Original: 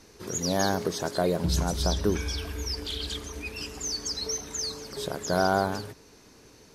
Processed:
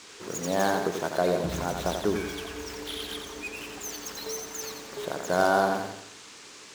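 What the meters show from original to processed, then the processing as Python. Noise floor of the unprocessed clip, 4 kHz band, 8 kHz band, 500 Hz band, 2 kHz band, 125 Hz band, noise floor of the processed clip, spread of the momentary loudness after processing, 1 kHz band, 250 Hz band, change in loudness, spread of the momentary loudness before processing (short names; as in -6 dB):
-54 dBFS, -4.5 dB, -4.0 dB, +2.0 dB, +3.0 dB, -6.5 dB, -48 dBFS, 12 LU, +2.5 dB, -1.5 dB, -0.5 dB, 9 LU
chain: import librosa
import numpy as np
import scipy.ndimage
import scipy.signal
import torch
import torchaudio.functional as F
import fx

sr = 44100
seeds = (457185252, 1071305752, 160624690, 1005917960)

y = scipy.signal.medfilt(x, 9)
y = fx.highpass(y, sr, hz=360.0, slope=6)
y = fx.dmg_noise_band(y, sr, seeds[0], low_hz=900.0, high_hz=7600.0, level_db=-52.0)
y = fx.echo_feedback(y, sr, ms=88, feedback_pct=43, wet_db=-6.0)
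y = F.gain(torch.from_numpy(y), 2.5).numpy()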